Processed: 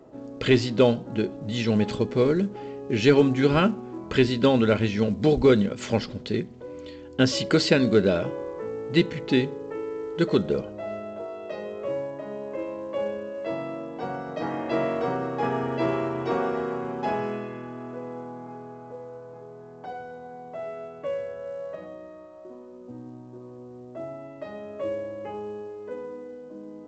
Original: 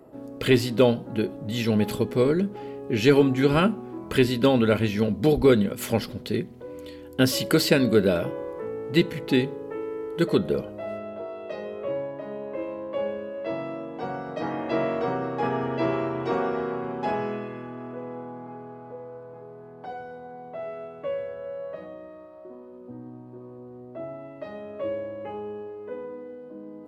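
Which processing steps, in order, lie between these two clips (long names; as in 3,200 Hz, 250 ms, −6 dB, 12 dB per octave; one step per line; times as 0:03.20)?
mu-law 128 kbit/s 16,000 Hz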